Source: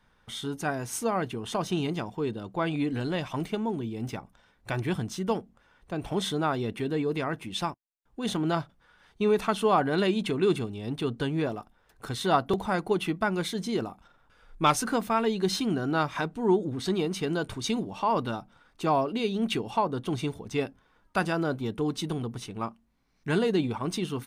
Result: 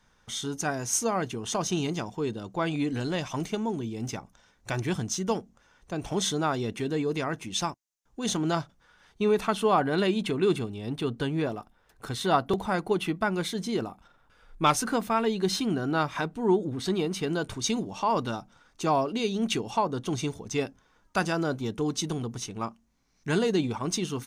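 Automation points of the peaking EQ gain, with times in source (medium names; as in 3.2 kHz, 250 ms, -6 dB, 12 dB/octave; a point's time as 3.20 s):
peaking EQ 6.3 kHz 0.63 oct
8.54 s +12.5 dB
9.44 s +2 dB
17.19 s +2 dB
17.94 s +11 dB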